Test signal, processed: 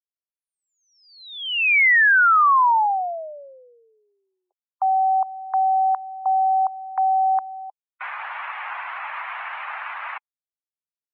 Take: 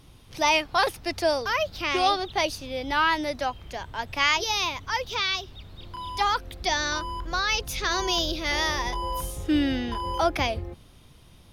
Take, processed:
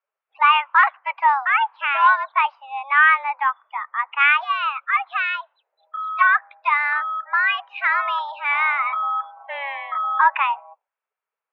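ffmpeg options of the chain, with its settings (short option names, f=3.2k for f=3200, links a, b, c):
-af "afftdn=nr=34:nf=-40,highpass=f=590:t=q:w=0.5412,highpass=f=590:t=q:w=1.307,lowpass=f=2.2k:t=q:w=0.5176,lowpass=f=2.2k:t=q:w=0.7071,lowpass=f=2.2k:t=q:w=1.932,afreqshift=280,volume=9dB"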